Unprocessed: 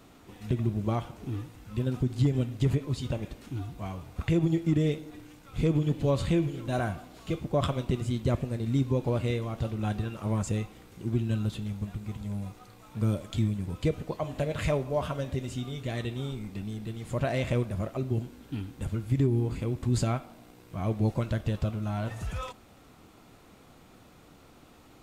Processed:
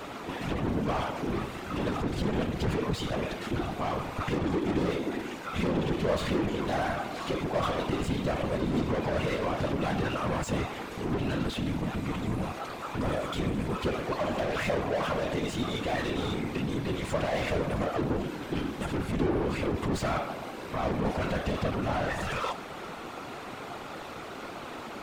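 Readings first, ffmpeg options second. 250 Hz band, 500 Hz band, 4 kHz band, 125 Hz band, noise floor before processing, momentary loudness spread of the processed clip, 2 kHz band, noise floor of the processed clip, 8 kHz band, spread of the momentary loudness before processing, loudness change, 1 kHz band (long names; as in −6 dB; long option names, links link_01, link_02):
+0.5 dB, +2.5 dB, +5.5 dB, −5.5 dB, −55 dBFS, 8 LU, +7.5 dB, −41 dBFS, +1.5 dB, 11 LU, −0.5 dB, +7.5 dB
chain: -filter_complex "[0:a]asplit=2[link_01][link_02];[link_02]highpass=frequency=720:poles=1,volume=35dB,asoftclip=type=tanh:threshold=-15.5dB[link_03];[link_01][link_03]amix=inputs=2:normalize=0,lowpass=frequency=1700:poles=1,volume=-6dB,bandreject=frequency=236.9:width_type=h:width=4,bandreject=frequency=473.8:width_type=h:width=4,bandreject=frequency=710.7:width_type=h:width=4,bandreject=frequency=947.6:width_type=h:width=4,bandreject=frequency=1184.5:width_type=h:width=4,afftfilt=real='hypot(re,im)*cos(2*PI*random(0))':imag='hypot(re,im)*sin(2*PI*random(1))':win_size=512:overlap=0.75"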